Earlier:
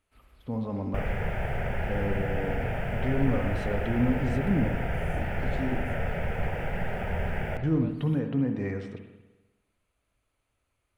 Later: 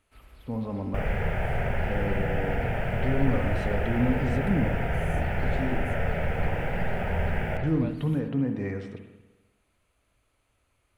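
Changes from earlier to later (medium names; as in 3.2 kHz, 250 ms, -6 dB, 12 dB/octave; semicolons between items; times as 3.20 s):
first sound +6.5 dB; second sound: send +6.0 dB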